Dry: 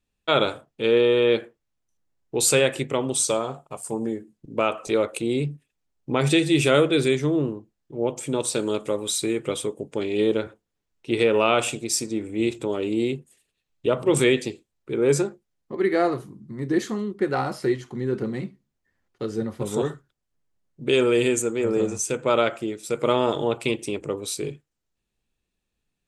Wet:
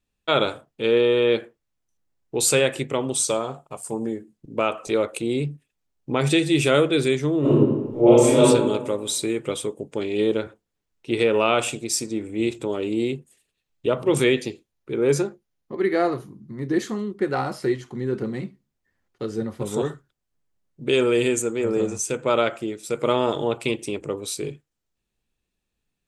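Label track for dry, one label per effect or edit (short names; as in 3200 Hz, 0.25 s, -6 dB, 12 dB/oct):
7.400000	8.410000	reverb throw, RT60 1.2 s, DRR -12 dB
13.920000	16.750000	notch 7900 Hz, Q 6.5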